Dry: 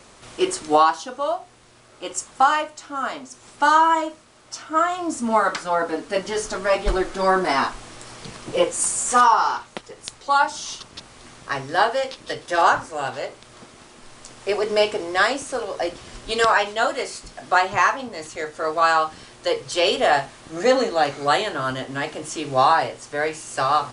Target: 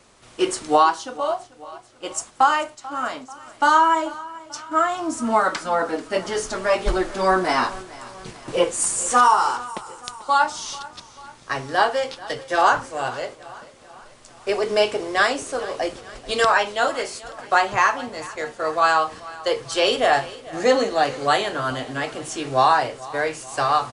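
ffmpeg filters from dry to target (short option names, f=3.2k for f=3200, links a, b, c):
-af "agate=range=-6dB:threshold=-36dB:ratio=16:detection=peak,aecho=1:1:439|878|1317|1756:0.112|0.0606|0.0327|0.0177"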